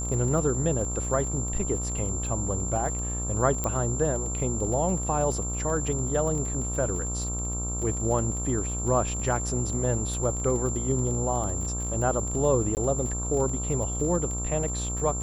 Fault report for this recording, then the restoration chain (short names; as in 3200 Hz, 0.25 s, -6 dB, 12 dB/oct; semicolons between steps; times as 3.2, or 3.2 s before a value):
buzz 60 Hz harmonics 23 -32 dBFS
crackle 30/s -33 dBFS
tone 7300 Hz -32 dBFS
3.64 pop -14 dBFS
12.75–12.77 gap 19 ms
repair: de-click; notch 7300 Hz, Q 30; de-hum 60 Hz, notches 23; interpolate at 12.75, 19 ms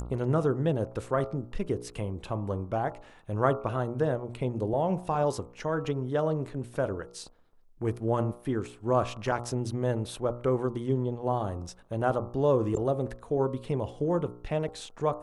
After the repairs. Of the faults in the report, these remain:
none